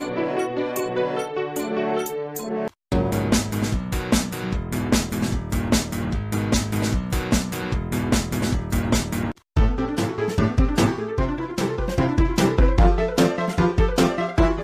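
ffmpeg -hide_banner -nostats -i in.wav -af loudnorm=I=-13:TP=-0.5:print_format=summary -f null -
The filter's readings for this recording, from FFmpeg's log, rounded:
Input Integrated:    -22.5 LUFS
Input True Peak:      -6.3 dBTP
Input LRA:             4.2 LU
Input Threshold:     -32.5 LUFS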